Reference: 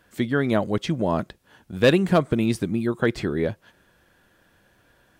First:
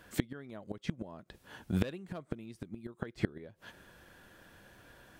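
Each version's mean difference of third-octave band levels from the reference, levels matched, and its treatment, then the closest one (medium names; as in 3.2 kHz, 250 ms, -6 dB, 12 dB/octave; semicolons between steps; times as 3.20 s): 7.5 dB: inverted gate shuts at -16 dBFS, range -28 dB; trim +2.5 dB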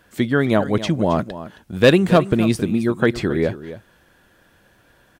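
1.5 dB: delay 269 ms -14 dB; trim +4.5 dB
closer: second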